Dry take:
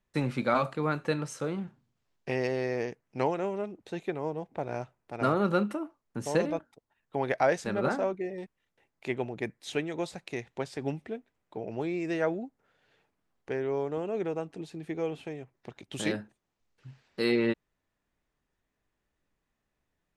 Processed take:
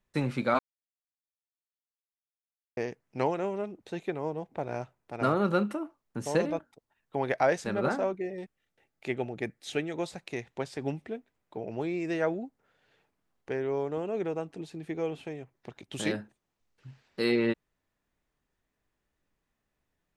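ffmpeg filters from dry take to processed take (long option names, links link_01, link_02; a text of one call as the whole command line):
ffmpeg -i in.wav -filter_complex "[0:a]asettb=1/sr,asplit=3[link_01][link_02][link_03];[link_01]atrim=end=8.194[link_04];[link_02]atrim=start=8.19:end=9.93,asetpts=PTS-STARTPTS,afade=type=in:duration=0.004:curve=qsin,afade=type=out:start_time=1.736:duration=0.004:curve=qsin,asuperstop=centerf=1000:order=4:qfactor=6.4[link_05];[link_03]atrim=start=9.926[link_06];[link_04][link_05]acrossfade=duration=0.004:curve1=hsin:curve2=qsin[link_07];[link_07][link_06]acrossfade=duration=0.004:curve1=qsin:curve2=hsin,asplit=3[link_08][link_09][link_10];[link_08]atrim=end=0.59,asetpts=PTS-STARTPTS,afade=type=out:start_time=0.586:duration=0.004:curve=hsin[link_11];[link_09]atrim=start=0.59:end=2.77,asetpts=PTS-STARTPTS,volume=0[link_12];[link_10]atrim=start=2.77,asetpts=PTS-STARTPTS,afade=type=in:duration=0.004:curve=hsin[link_13];[link_11][link_12][link_13]concat=n=3:v=0:a=1" out.wav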